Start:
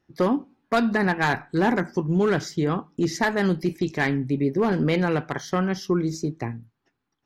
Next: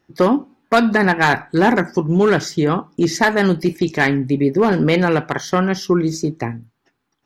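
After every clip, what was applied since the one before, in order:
low-shelf EQ 170 Hz −5 dB
level +8 dB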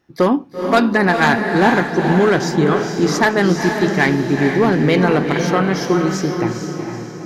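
feedback delay with all-pass diffusion 454 ms, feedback 47%, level −5 dB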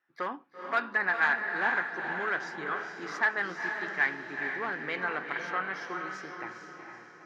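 resonant band-pass 1,600 Hz, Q 1.9
level −7.5 dB

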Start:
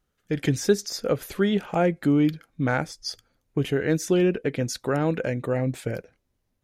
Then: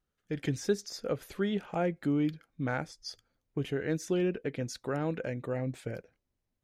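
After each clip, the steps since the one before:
high-shelf EQ 11,000 Hz −8.5 dB
level −8.5 dB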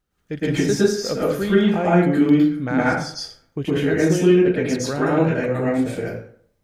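dense smooth reverb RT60 0.56 s, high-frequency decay 0.6×, pre-delay 100 ms, DRR −8 dB
level +6 dB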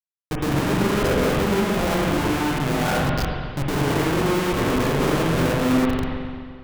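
fade-out on the ending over 1.32 s
comparator with hysteresis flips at −24 dBFS
spring reverb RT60 1.9 s, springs 43/59 ms, chirp 80 ms, DRR −1.5 dB
level −4 dB

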